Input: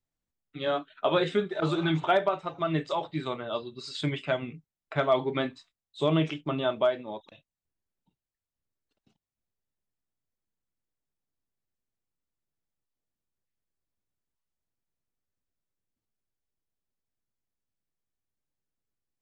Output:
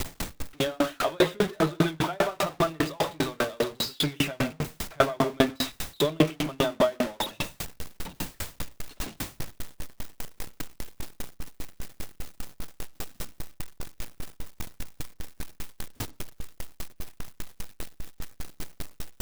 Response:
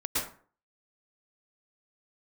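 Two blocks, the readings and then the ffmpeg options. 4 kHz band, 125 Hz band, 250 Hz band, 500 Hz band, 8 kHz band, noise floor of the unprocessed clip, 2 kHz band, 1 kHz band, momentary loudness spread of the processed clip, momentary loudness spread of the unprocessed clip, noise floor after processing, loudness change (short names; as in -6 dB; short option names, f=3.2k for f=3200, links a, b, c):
+6.0 dB, +1.5 dB, +3.5 dB, +1.0 dB, n/a, under -85 dBFS, +4.0 dB, +1.0 dB, 19 LU, 10 LU, -61 dBFS, +0.5 dB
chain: -filter_complex "[0:a]aeval=exprs='val(0)+0.5*0.0531*sgn(val(0))':c=same,asplit=2[a][b];[1:a]atrim=start_sample=2205,lowpass=5.8k[c];[b][c]afir=irnorm=-1:irlink=0,volume=-14dB[d];[a][d]amix=inputs=2:normalize=0,aeval=exprs='val(0)*pow(10,-38*if(lt(mod(5*n/s,1),2*abs(5)/1000),1-mod(5*n/s,1)/(2*abs(5)/1000),(mod(5*n/s,1)-2*abs(5)/1000)/(1-2*abs(5)/1000))/20)':c=same,volume=6.5dB"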